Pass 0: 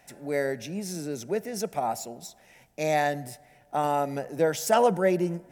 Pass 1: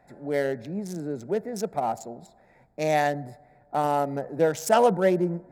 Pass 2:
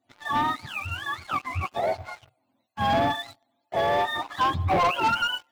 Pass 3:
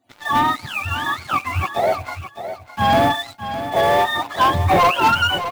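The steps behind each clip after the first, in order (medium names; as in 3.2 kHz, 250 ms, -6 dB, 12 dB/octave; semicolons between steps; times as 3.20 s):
local Wiener filter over 15 samples; trim +2 dB
spectrum inverted on a logarithmic axis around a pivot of 710 Hz; waveshaping leveller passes 3; trim -7 dB
block-companded coder 5-bit; feedback delay 611 ms, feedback 17%, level -11 dB; trim +7.5 dB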